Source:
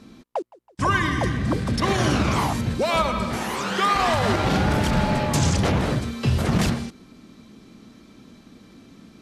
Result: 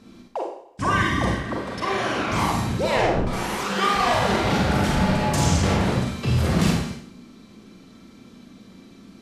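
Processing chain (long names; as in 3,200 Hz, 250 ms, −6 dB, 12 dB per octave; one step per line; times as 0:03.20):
0:01.34–0:02.32: bass and treble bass −15 dB, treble −9 dB
0:02.87: tape stop 0.40 s
four-comb reverb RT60 0.61 s, combs from 33 ms, DRR −1.5 dB
level −3 dB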